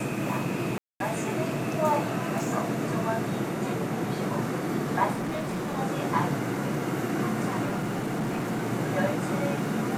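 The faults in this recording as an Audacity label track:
0.780000	1.000000	drop-out 222 ms
5.140000	5.790000	clipping −27.5 dBFS
7.650000	8.640000	clipping −25 dBFS

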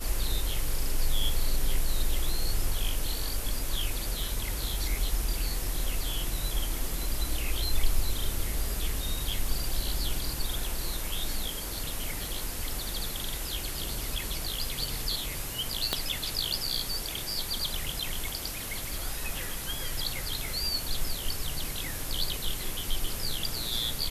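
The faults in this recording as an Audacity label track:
15.930000	15.930000	click −11 dBFS

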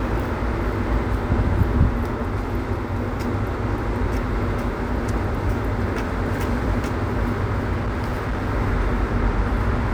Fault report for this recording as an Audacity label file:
7.740000	8.490000	clipping −20 dBFS

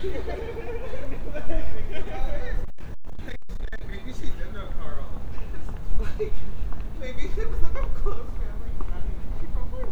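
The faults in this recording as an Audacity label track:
2.650000	3.970000	clipping −22.5 dBFS

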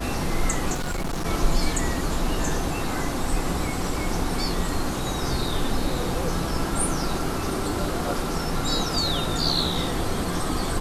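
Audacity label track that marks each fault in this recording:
0.730000	1.260000	clipping −24 dBFS

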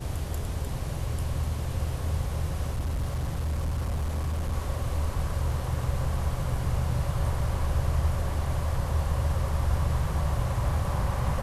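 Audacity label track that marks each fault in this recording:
2.740000	4.530000	clipping −25 dBFS

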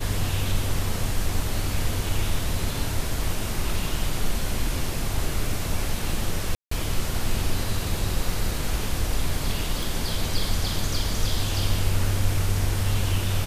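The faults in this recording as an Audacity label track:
6.550000	6.710000	drop-out 164 ms
9.830000	9.830000	click

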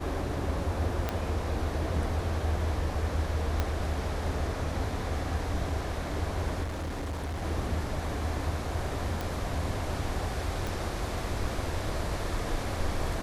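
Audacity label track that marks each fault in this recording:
1.090000	1.090000	click −15 dBFS
3.600000	3.600000	click −14 dBFS
6.630000	7.430000	clipping −31 dBFS
9.210000	9.210000	click
10.670000	10.670000	click

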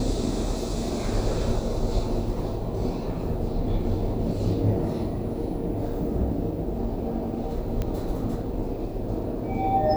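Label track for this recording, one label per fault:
7.820000	7.820000	click −16 dBFS

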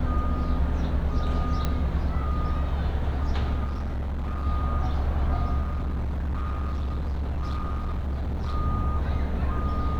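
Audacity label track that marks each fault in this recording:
1.650000	1.650000	click −13 dBFS
3.640000	4.460000	clipping −26 dBFS
5.610000	8.550000	clipping −25 dBFS

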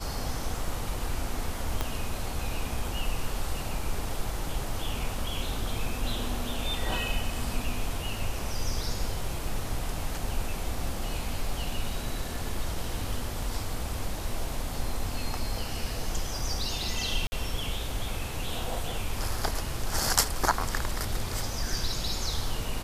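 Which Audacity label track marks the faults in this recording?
1.810000	1.810000	click −13 dBFS
13.420000	13.420000	drop-out 2.9 ms
17.270000	17.320000	drop-out 50 ms

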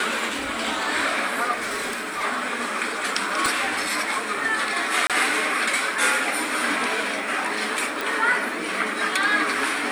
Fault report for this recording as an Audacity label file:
1.560000	2.240000	clipping −24 dBFS
3.460000	3.460000	click
5.070000	5.100000	drop-out 27 ms
8.010000	8.010000	click

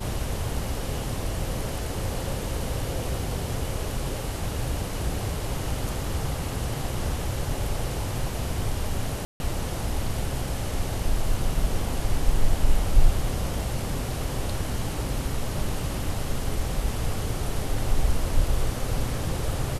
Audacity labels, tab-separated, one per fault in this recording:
9.250000	9.400000	drop-out 151 ms

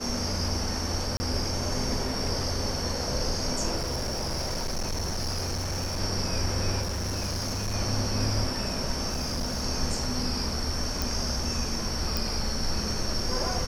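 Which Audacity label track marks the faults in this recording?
1.170000	1.200000	drop-out 30 ms
3.770000	6.010000	clipping −26.5 dBFS
6.810000	7.750000	clipping −27 dBFS
9.090000	9.640000	clipping −26 dBFS
11.020000	11.020000	click
12.170000	12.170000	click

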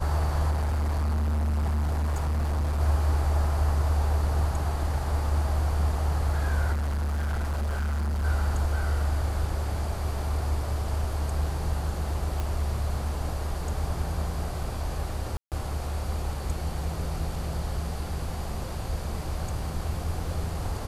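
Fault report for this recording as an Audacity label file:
0.500000	2.810000	clipping −23.5 dBFS
6.720000	8.250000	clipping −25 dBFS
12.400000	12.400000	click
15.370000	15.520000	drop-out 148 ms

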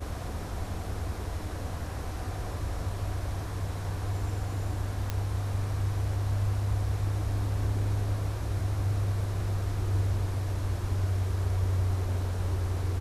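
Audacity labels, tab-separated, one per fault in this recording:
5.100000	5.100000	click −16 dBFS

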